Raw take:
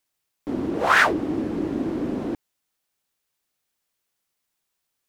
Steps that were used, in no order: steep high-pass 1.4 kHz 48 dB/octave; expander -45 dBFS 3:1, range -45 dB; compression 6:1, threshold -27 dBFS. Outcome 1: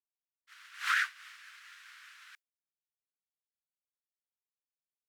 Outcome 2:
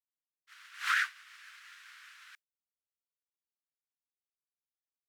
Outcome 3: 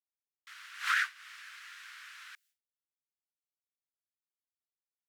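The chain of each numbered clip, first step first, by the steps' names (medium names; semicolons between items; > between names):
steep high-pass > expander > compression; steep high-pass > compression > expander; expander > steep high-pass > compression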